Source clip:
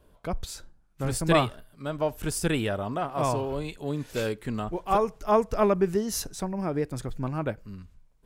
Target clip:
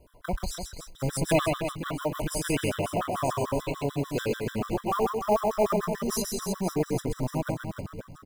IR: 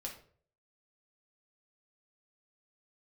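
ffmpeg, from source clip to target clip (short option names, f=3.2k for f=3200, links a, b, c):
-filter_complex "[0:a]asplit=2[a][b];[b]acompressor=threshold=-33dB:ratio=6,volume=2dB[c];[a][c]amix=inputs=2:normalize=0,aecho=1:1:130|299|518.7|804.3|1176:0.631|0.398|0.251|0.158|0.1,acrusher=bits=5:mode=log:mix=0:aa=0.000001,afftfilt=real='re*gt(sin(2*PI*6.8*pts/sr)*(1-2*mod(floor(b*sr/1024/1000),2)),0)':imag='im*gt(sin(2*PI*6.8*pts/sr)*(1-2*mod(floor(b*sr/1024/1000),2)),0)':win_size=1024:overlap=0.75,volume=-2.5dB"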